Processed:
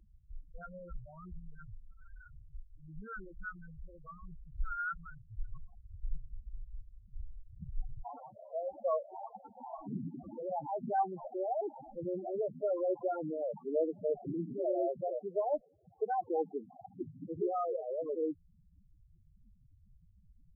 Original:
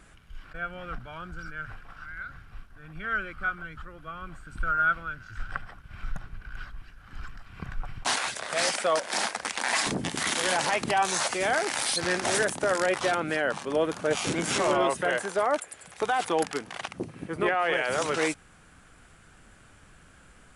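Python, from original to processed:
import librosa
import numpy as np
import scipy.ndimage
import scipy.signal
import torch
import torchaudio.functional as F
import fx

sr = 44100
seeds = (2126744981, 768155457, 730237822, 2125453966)

y = scipy.signal.medfilt(x, 25)
y = fx.spec_topn(y, sr, count=4)
y = F.gain(torch.from_numpy(y), -3.5).numpy()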